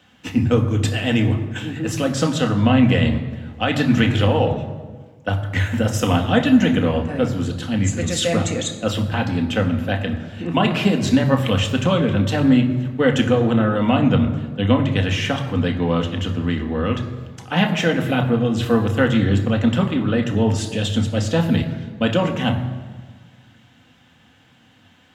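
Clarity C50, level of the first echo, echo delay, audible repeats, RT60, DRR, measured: 9.5 dB, no echo audible, no echo audible, no echo audible, 1.5 s, 2.5 dB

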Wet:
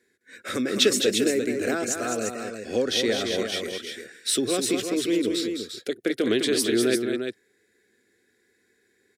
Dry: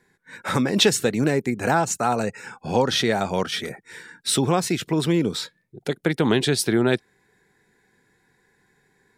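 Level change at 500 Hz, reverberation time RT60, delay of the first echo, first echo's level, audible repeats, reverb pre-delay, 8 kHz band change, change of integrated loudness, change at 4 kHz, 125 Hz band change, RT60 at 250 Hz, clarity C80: −1.0 dB, no reverb audible, 209 ms, −6.5 dB, 2, no reverb audible, 0.0 dB, −2.5 dB, −0.5 dB, −14.5 dB, no reverb audible, no reverb audible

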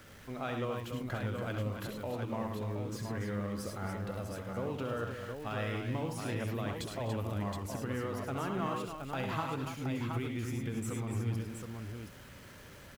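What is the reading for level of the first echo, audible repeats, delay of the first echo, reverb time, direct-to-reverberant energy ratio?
−7.0 dB, 5, 68 ms, no reverb audible, no reverb audible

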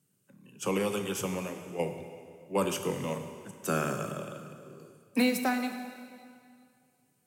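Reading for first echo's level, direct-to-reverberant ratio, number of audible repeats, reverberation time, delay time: no echo audible, 6.0 dB, no echo audible, 2.2 s, no echo audible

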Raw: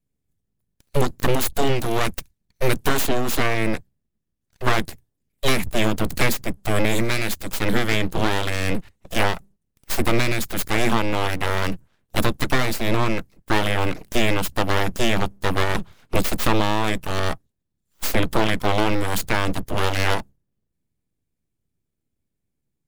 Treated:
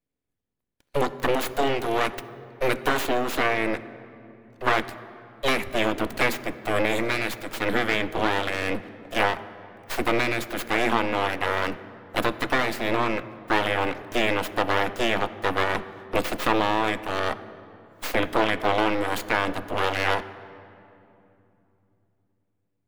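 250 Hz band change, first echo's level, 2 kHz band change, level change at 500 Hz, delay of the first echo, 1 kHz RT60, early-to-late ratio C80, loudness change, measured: −4.0 dB, no echo audible, −0.5 dB, −1.0 dB, no echo audible, 2.7 s, 15.5 dB, −2.0 dB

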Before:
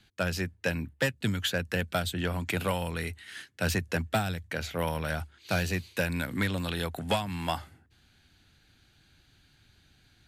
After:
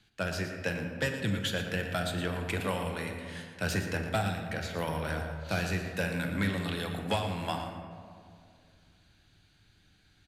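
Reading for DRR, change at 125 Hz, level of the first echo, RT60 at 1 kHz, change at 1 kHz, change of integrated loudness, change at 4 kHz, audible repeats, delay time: 3.0 dB, −1.5 dB, −10.0 dB, 2.1 s, −1.5 dB, −2.0 dB, −2.5 dB, 1, 116 ms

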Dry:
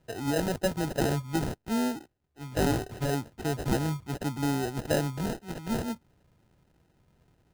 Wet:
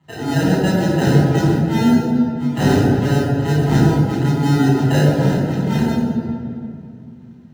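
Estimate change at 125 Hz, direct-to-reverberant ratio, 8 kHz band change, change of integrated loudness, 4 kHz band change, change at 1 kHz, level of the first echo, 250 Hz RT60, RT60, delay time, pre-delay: +17.5 dB, −4.5 dB, +5.5 dB, +14.0 dB, +10.0 dB, +11.0 dB, no echo audible, 3.5 s, 2.4 s, no echo audible, 3 ms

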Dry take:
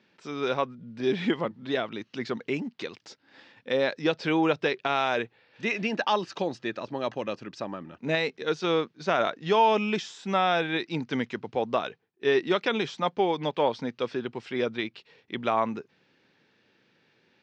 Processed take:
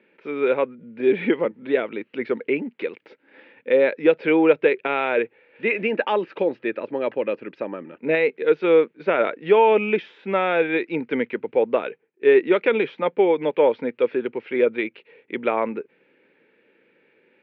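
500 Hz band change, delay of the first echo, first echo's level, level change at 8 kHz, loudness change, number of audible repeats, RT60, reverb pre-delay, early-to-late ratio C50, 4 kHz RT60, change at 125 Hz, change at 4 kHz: +9.0 dB, no echo audible, no echo audible, can't be measured, +6.5 dB, no echo audible, no reverb audible, no reverb audible, no reverb audible, no reverb audible, −3.0 dB, −5.0 dB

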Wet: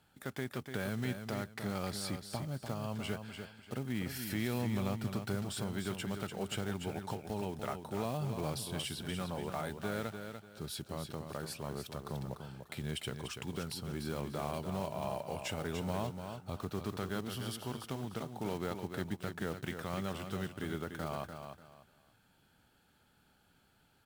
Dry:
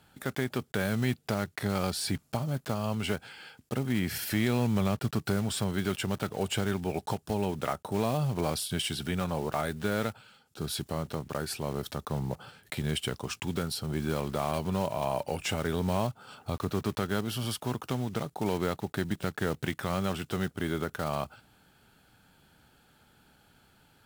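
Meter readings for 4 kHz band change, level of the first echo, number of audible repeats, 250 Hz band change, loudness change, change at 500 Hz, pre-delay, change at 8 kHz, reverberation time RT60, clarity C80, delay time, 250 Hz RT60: −7.0 dB, −7.5 dB, 3, −7.0 dB, −7.5 dB, −7.5 dB, no reverb audible, −7.0 dB, no reverb audible, no reverb audible, 294 ms, no reverb audible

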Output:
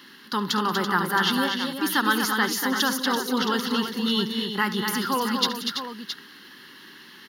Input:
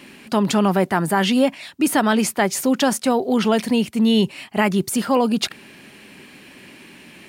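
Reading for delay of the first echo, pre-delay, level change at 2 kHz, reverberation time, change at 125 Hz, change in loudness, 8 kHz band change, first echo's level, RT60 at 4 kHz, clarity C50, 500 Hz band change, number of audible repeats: 72 ms, no reverb audible, +1.0 dB, no reverb audible, −9.0 dB, −5.0 dB, −5.0 dB, −16.0 dB, no reverb audible, no reverb audible, −10.0 dB, 5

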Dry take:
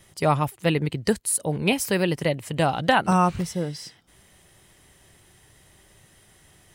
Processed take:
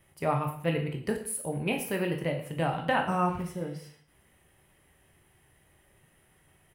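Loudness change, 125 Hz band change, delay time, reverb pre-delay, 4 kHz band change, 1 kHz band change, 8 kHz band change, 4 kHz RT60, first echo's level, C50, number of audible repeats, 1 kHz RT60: −7.0 dB, −6.5 dB, 113 ms, 10 ms, −10.5 dB, −7.0 dB, −10.5 dB, 0.50 s, −16.5 dB, 8.0 dB, 1, 0.55 s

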